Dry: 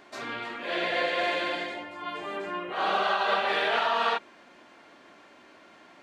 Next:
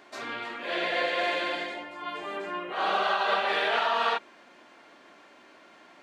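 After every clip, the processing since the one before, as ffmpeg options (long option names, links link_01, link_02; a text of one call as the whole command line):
ffmpeg -i in.wav -af "lowshelf=frequency=130:gain=-9.5" out.wav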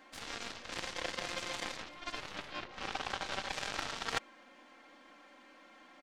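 ffmpeg -i in.wav -af "aecho=1:1:3.8:0.9,areverse,acompressor=threshold=-32dB:ratio=8,areverse,aeval=exprs='0.0668*(cos(1*acos(clip(val(0)/0.0668,-1,1)))-cos(1*PI/2))+0.0237*(cos(3*acos(clip(val(0)/0.0668,-1,1)))-cos(3*PI/2))+0.00119*(cos(4*acos(clip(val(0)/0.0668,-1,1)))-cos(4*PI/2))+0.00211*(cos(7*acos(clip(val(0)/0.0668,-1,1)))-cos(7*PI/2))+0.000596*(cos(8*acos(clip(val(0)/0.0668,-1,1)))-cos(8*PI/2))':channel_layout=same,volume=4dB" out.wav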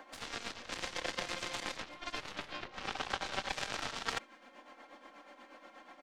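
ffmpeg -i in.wav -filter_complex "[0:a]acrossover=split=460|1100[link_01][link_02][link_03];[link_02]acompressor=mode=upward:threshold=-51dB:ratio=2.5[link_04];[link_01][link_04][link_03]amix=inputs=3:normalize=0,tremolo=f=8.3:d=0.62,volume=3dB" out.wav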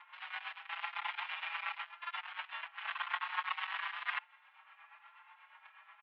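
ffmpeg -i in.wav -filter_complex "[0:a]acrusher=bits=8:dc=4:mix=0:aa=0.000001,highpass=frequency=520:width_type=q:width=0.5412,highpass=frequency=520:width_type=q:width=1.307,lowpass=frequency=2700:width_type=q:width=0.5176,lowpass=frequency=2700:width_type=q:width=0.7071,lowpass=frequency=2700:width_type=q:width=1.932,afreqshift=310,asplit=2[link_01][link_02];[link_02]adelay=5.2,afreqshift=0.95[link_03];[link_01][link_03]amix=inputs=2:normalize=1,volume=5dB" out.wav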